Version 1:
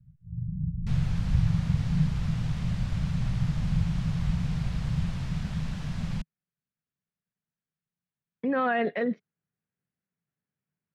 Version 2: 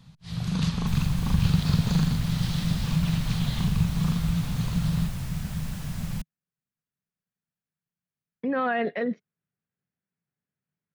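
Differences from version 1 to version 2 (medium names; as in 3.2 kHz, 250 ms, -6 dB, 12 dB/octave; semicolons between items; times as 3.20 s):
first sound: remove inverse Chebyshev low-pass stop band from 840 Hz, stop band 80 dB; master: remove low-pass 4.9 kHz 12 dB/octave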